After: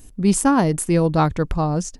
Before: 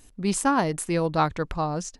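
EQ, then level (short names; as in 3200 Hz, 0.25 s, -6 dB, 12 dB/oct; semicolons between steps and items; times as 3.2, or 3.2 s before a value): low shelf 490 Hz +10.5 dB; high shelf 7300 Hz +10 dB; notch 4000 Hz, Q 22; 0.0 dB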